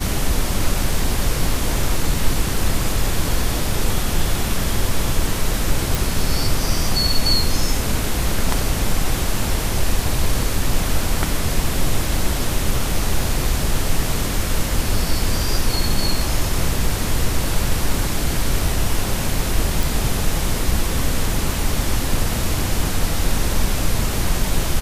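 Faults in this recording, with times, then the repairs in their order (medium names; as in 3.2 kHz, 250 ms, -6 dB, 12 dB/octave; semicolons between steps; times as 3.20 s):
5.95 s: pop
19.83 s: pop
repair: de-click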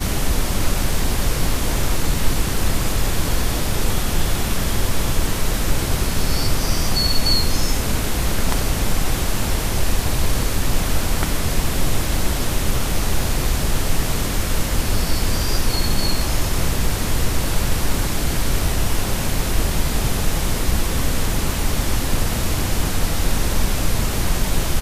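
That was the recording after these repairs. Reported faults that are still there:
nothing left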